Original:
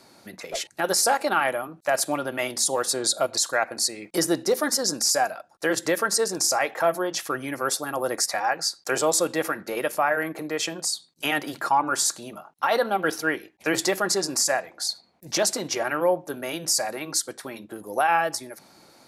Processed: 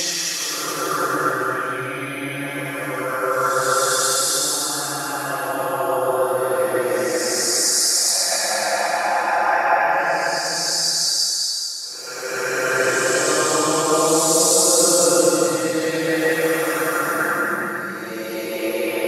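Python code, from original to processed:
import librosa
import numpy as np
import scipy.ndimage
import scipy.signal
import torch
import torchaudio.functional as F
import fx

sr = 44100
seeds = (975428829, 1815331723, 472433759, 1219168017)

y = x + 0.92 * np.pad(x, (int(5.8 * sr / 1000.0), 0))[:len(x)]
y = fx.paulstretch(y, sr, seeds[0], factor=7.3, window_s=0.25, from_s=7.16)
y = fx.hpss(y, sr, part='percussive', gain_db=7)
y = fx.echo_thinned(y, sr, ms=425, feedback_pct=26, hz=420.0, wet_db=-9.0)
y = y * 10.0 ** (1.0 / 20.0)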